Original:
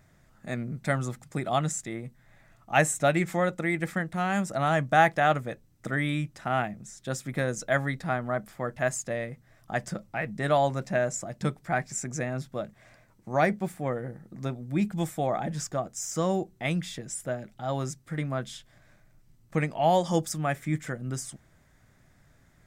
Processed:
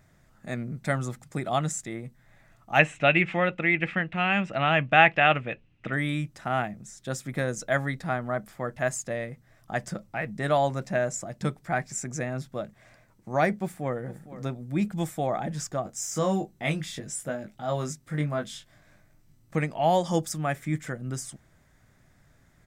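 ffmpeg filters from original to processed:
-filter_complex "[0:a]asettb=1/sr,asplit=3[s0][s1][s2];[s0]atrim=end=2.794[s3];[s1]atrim=start=2.79:end=5.93,asetpts=PTS-STARTPTS,afade=t=in:d=0.004:c=qsin,afade=t=out:st=3.136:d=0.004:c=qsin,lowpass=f=2700:t=q:w=7.3[s4];[s2]atrim=start=5.926[s5];[s3][s4]acrossfade=d=0.004:c1=hsin:c2=qsin[s6];[s6][s5]acrossfade=d=0.004:c1=qsin:c2=hsin,asplit=2[s7][s8];[s8]afade=t=in:st=13.56:d=0.01,afade=t=out:st=13.96:d=0.01,aecho=0:1:460|920:0.177828|0.0266742[s9];[s7][s9]amix=inputs=2:normalize=0,asettb=1/sr,asplit=3[s10][s11][s12];[s10]atrim=end=15.834[s13];[s11]atrim=start=15.83:end=19.56,asetpts=PTS-STARTPTS,afade=t=in:d=0.004:c=qsin,afade=t=out:st=3.726:d=0.004:c=qsin,asplit=2[s14][s15];[s15]adelay=20,volume=0.631[s16];[s14][s16]amix=inputs=2:normalize=0,atrim=end_sample=164493[s17];[s12]atrim=start=19.556[s18];[s13][s17]acrossfade=d=0.004:c1=hsin:c2=qsin[s19];[s19][s18]acrossfade=d=0.004:c1=qsin:c2=hsin"

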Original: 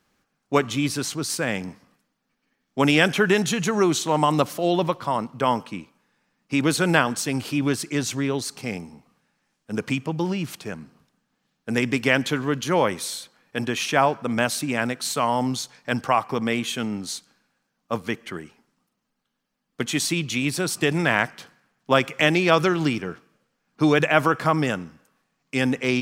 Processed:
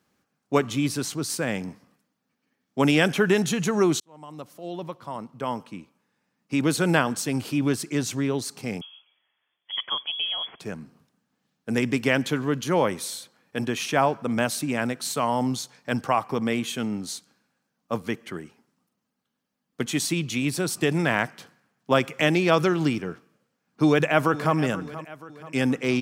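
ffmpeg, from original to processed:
-filter_complex "[0:a]asettb=1/sr,asplit=3[s0][s1][s2];[s0]atrim=end=8.814[s3];[s1]atrim=start=8.81:end=10.6,asetpts=PTS-STARTPTS,afade=t=in:d=0.004:c=qsin,afade=t=out:st=1.786:d=0.004:c=qsin,lowpass=f=3000:t=q:w=0.5098,lowpass=f=3000:t=q:w=0.6013,lowpass=f=3000:t=q:w=0.9,lowpass=f=3000:t=q:w=2.563,afreqshift=-3500[s4];[s2]atrim=start=10.596[s5];[s3][s4]acrossfade=d=0.004:c1=hsin:c2=qsin[s6];[s6][s5]acrossfade=d=0.004:c1=qsin:c2=hsin,asplit=2[s7][s8];[s8]afade=t=in:st=23.85:d=0.01,afade=t=out:st=24.56:d=0.01,aecho=0:1:480|960|1440|1920|2400:0.177828|0.088914|0.044457|0.0222285|0.0111142[s9];[s7][s9]amix=inputs=2:normalize=0,asplit=2[s10][s11];[s10]atrim=end=4,asetpts=PTS-STARTPTS,afade=t=out:st=3.996:d=0.004:c=hsin[s12];[s11]atrim=start=4,asetpts=PTS-STARTPTS,afade=t=in:d=2.88[s13];[s12][s13]concat=n=2:v=0:a=1,highpass=77,equalizer=f=2500:w=0.31:g=-4"

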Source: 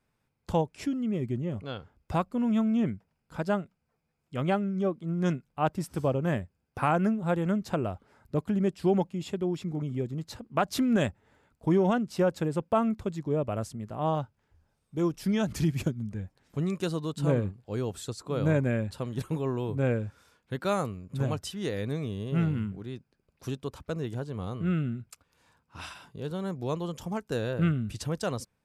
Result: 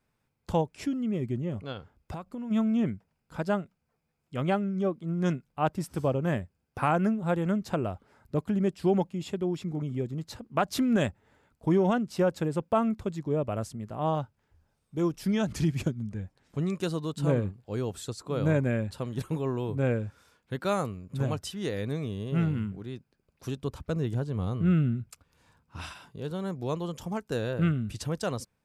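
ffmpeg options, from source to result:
-filter_complex "[0:a]asplit=3[s0][s1][s2];[s0]afade=t=out:st=1.72:d=0.02[s3];[s1]acompressor=threshold=0.0224:ratio=12:attack=3.2:release=140:knee=1:detection=peak,afade=t=in:st=1.72:d=0.02,afade=t=out:st=2.5:d=0.02[s4];[s2]afade=t=in:st=2.5:d=0.02[s5];[s3][s4][s5]amix=inputs=3:normalize=0,asettb=1/sr,asplit=3[s6][s7][s8];[s6]atrim=end=15.374[s9];[s7]atrim=start=15.37:end=16.8,asetpts=PTS-STARTPTS,afade=t=in:d=0.004:c=qsin,afade=t=out:st=1.426:d=0.004:c=qsin,lowpass=11000[s10];[s8]atrim=start=16.796[s11];[s9][s10]acrossfade=d=0.004:c1=hsin:c2=qsin[s12];[s12][s11]acrossfade=d=0.004:c1=qsin:c2=hsin,asettb=1/sr,asplit=3[s13][s14][s15];[s13]atrim=end=23.574[s16];[s14]atrim=start=23.57:end=25.93,asetpts=PTS-STARTPTS,afade=t=in:d=0.004:c=qsin,afade=t=out:st=2.356:d=0.004:c=qsin,lowshelf=f=220:g=7.5[s17];[s15]atrim=start=25.926[s18];[s16][s17]acrossfade=d=0.004:c1=hsin:c2=qsin[s19];[s19][s18]acrossfade=d=0.004:c1=qsin:c2=hsin"

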